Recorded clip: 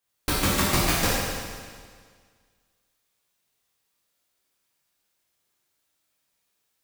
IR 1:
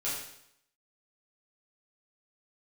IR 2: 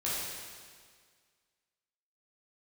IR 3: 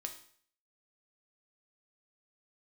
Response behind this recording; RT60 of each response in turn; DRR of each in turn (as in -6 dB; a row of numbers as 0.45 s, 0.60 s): 2; 0.75 s, 1.8 s, 0.55 s; -10.0 dB, -9.0 dB, 4.0 dB